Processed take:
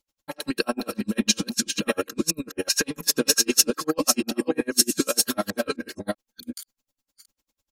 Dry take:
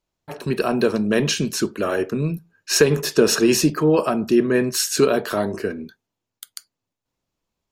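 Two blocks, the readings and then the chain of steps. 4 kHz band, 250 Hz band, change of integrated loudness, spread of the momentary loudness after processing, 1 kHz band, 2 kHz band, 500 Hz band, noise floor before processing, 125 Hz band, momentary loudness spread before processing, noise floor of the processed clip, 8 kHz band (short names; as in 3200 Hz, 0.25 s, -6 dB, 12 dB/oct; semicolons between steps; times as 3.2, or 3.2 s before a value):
+1.5 dB, -6.0 dB, -3.5 dB, 14 LU, -5.5 dB, -4.0 dB, -9.5 dB, -84 dBFS, -13.5 dB, 12 LU, under -85 dBFS, +3.0 dB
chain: reverse delay 0.384 s, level -1 dB; comb 3.7 ms, depth 78%; compressor 2:1, threshold -22 dBFS, peak gain reduction 8 dB; high shelf 3400 Hz +12 dB; dB-linear tremolo 10 Hz, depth 37 dB; gain +1 dB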